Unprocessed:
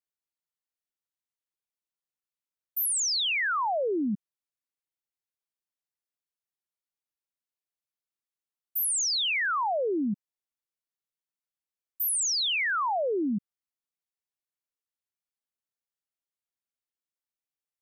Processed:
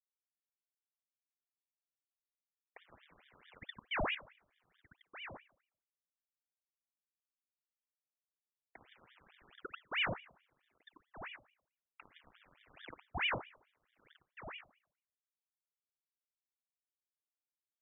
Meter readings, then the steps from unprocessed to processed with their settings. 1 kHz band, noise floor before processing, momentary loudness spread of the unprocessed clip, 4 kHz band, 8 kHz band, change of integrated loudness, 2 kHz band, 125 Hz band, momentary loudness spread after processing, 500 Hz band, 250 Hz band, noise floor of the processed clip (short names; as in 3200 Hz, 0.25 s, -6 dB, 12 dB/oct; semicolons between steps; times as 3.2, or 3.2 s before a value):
-15.0 dB, under -85 dBFS, 9 LU, -15.0 dB, under -40 dB, -14.0 dB, -11.0 dB, -4.5 dB, 20 LU, -16.5 dB, -21.0 dB, under -85 dBFS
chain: resonant low shelf 390 Hz +6 dB, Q 3; sample leveller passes 3; flange 0.51 Hz, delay 2.6 ms, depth 4.4 ms, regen +86%; flipped gate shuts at -31 dBFS, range -28 dB; requantised 8-bit, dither none; brick-wall FIR band-pass 170–1000 Hz; outdoor echo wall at 210 m, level -13 dB; FDN reverb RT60 0.5 s, low-frequency decay 1.2×, high-frequency decay 1×, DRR 12 dB; ring modulator with a swept carrier 1500 Hz, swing 80%, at 4.6 Hz; gain +12 dB